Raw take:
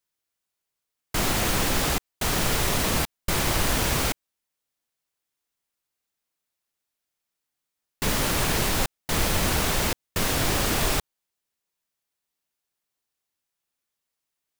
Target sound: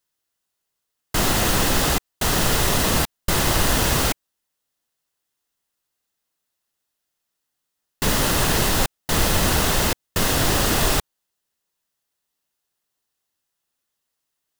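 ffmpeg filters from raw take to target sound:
-af "bandreject=f=2300:w=9.5,volume=1.68"

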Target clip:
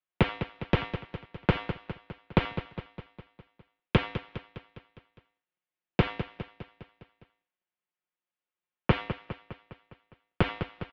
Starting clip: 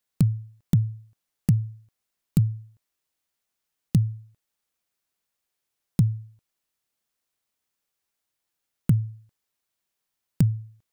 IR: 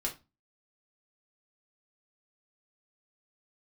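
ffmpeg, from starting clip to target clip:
-af "agate=range=0.0224:threshold=0.00158:ratio=3:detection=peak,aecho=1:1:5.5:0.65,asoftclip=type=tanh:threshold=0.237,acrusher=bits=7:mode=log:mix=0:aa=0.000001,aecho=1:1:204|408|612|816|1020|1224:0.178|0.103|0.0598|0.0347|0.0201|0.0117,highpass=f=550:t=q:w=0.5412,highpass=f=550:t=q:w=1.307,lowpass=f=3500:t=q:w=0.5176,lowpass=f=3500:t=q:w=0.7071,lowpass=f=3500:t=q:w=1.932,afreqshift=-380,alimiter=level_in=44.7:limit=0.891:release=50:level=0:latency=1,volume=0.376"

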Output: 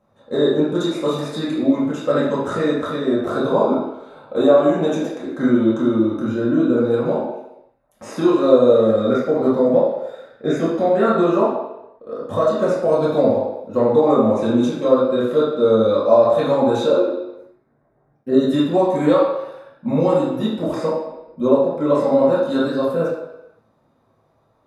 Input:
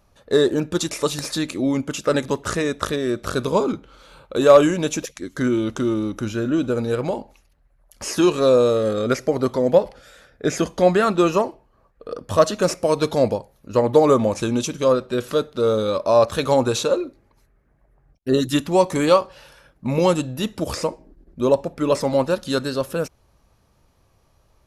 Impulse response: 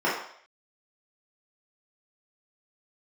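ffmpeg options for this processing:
-filter_complex "[0:a]asettb=1/sr,asplit=3[s0][s1][s2];[s0]atrim=end=3.094[s3];[s1]atrim=start=3.09:end=5.43,asetpts=PTS-STARTPTS,afade=t=in:d=0.004:c=qsin,afade=t=out:st=2.336:d=0.004:c=qsin,equalizer=f=740:t=o:w=0.48:g=10[s4];[s2]atrim=start=5.426[s5];[s3][s4]acrossfade=d=0.004:c1=hsin:c2=qsin[s6];[s6][s5]acrossfade=d=0.004:c1=qsin:c2=hsin,alimiter=limit=0.355:level=0:latency=1:release=252[s7];[1:a]atrim=start_sample=2205,asetrate=30870,aresample=44100[s8];[s7][s8]afir=irnorm=-1:irlink=0,volume=0.168"

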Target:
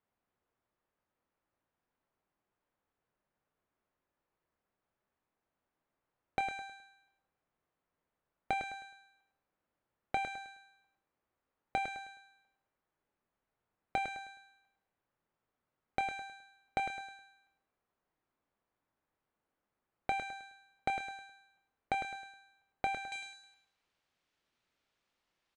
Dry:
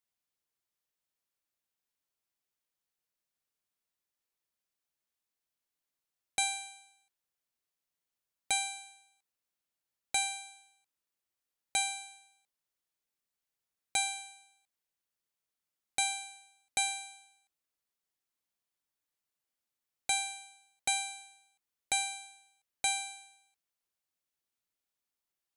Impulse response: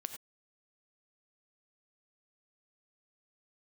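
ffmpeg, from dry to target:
-filter_complex "[0:a]asetnsamples=n=441:p=0,asendcmd='23.12 lowpass f 3600',lowpass=1300,acompressor=threshold=0.00562:ratio=3,asplit=2[s0][s1];[s1]adelay=25,volume=0.224[s2];[s0][s2]amix=inputs=2:normalize=0,aecho=1:1:105|210|315|420:0.398|0.127|0.0408|0.013,volume=3.76"

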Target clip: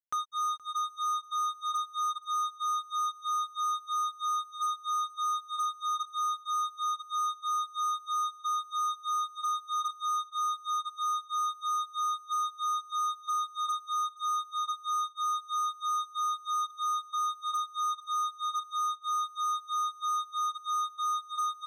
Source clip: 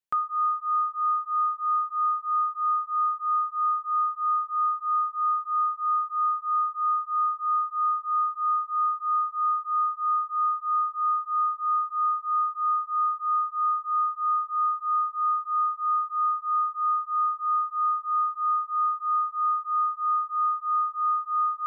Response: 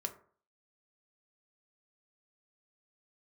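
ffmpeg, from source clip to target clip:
-af "flanger=delay=2.4:depth=4.9:regen=-84:speed=0.13:shape=sinusoidal,acrusher=bits=4:mix=0:aa=0.5,aecho=1:1:472|944|1416:0.0794|0.0357|0.0161,volume=0.668"

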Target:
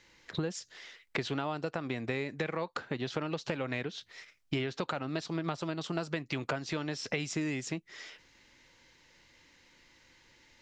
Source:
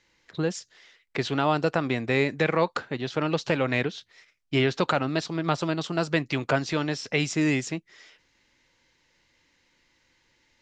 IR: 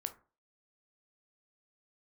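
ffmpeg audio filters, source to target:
-af "acompressor=threshold=0.0178:ratio=10,volume=1.68"

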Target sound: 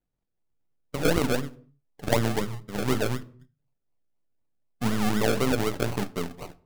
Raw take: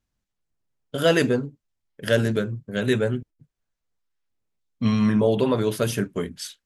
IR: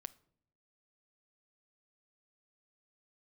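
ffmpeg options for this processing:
-filter_complex "[0:a]aeval=exprs='if(lt(val(0),0),0.447*val(0),val(0))':c=same,acrusher=samples=36:mix=1:aa=0.000001:lfo=1:lforange=21.6:lforate=4[s0];[1:a]atrim=start_sample=2205,afade=t=out:st=0.36:d=0.01,atrim=end_sample=16317[s1];[s0][s1]afir=irnorm=-1:irlink=0,volume=1.41"

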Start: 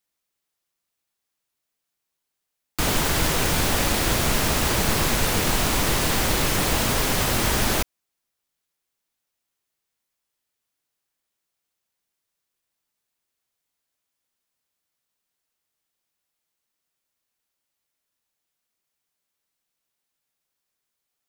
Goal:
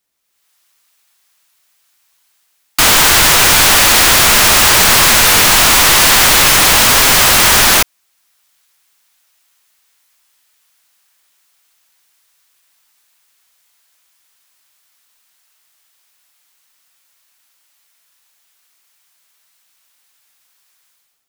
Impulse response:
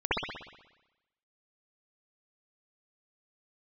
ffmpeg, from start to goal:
-filter_complex "[0:a]acrossover=split=810[s0][s1];[s1]dynaudnorm=f=110:g=7:m=5.01[s2];[s0][s2]amix=inputs=2:normalize=0,apsyclip=4.73,volume=0.562"

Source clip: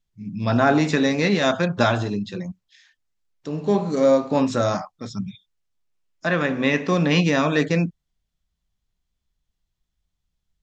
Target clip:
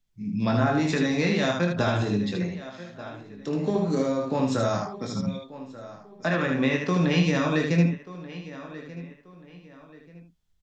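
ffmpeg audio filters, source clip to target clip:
-filter_complex "[0:a]asplit=2[s0][s1];[s1]adelay=1184,lowpass=f=3600:p=1,volume=0.0841,asplit=2[s2][s3];[s3]adelay=1184,lowpass=f=3600:p=1,volume=0.34[s4];[s2][s4]amix=inputs=2:normalize=0[s5];[s0][s5]amix=inputs=2:normalize=0,acrossover=split=140[s6][s7];[s7]acompressor=threshold=0.0631:ratio=5[s8];[s6][s8]amix=inputs=2:normalize=0,asplit=2[s9][s10];[s10]aecho=0:1:23|77:0.473|0.631[s11];[s9][s11]amix=inputs=2:normalize=0"

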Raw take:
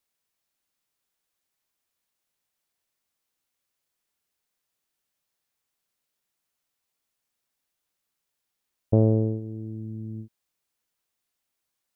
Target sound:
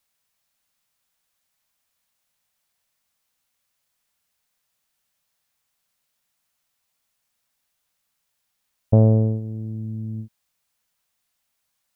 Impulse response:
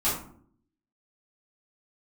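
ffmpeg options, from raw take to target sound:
-af "equalizer=f=360:w=2.4:g=-11,volume=2.11"

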